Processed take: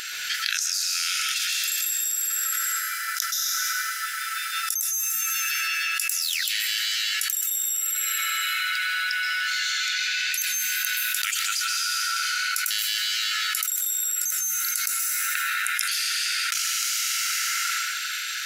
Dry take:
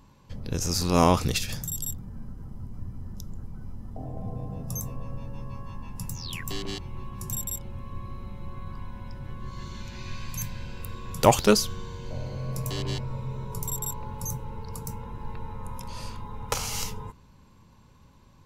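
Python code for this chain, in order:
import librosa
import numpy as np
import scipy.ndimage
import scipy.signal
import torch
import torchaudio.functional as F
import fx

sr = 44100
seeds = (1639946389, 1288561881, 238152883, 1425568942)

y = fx.brickwall_highpass(x, sr, low_hz=1300.0)
y = fx.rev_plate(y, sr, seeds[0], rt60_s=2.2, hf_ratio=0.6, predelay_ms=115, drr_db=-2.0)
y = fx.env_flatten(y, sr, amount_pct=100)
y = F.gain(torch.from_numpy(y), -4.0).numpy()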